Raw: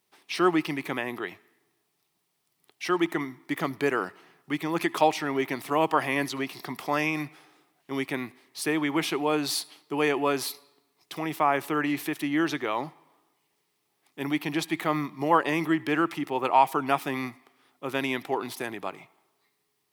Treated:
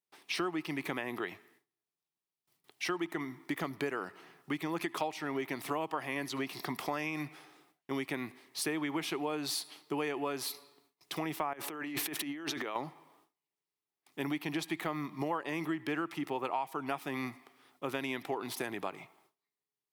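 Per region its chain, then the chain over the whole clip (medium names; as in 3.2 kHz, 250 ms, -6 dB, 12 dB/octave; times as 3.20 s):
11.53–12.76 s: high-pass 180 Hz + compressor with a negative ratio -37 dBFS
whole clip: gate with hold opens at -55 dBFS; compression 6:1, threshold -32 dBFS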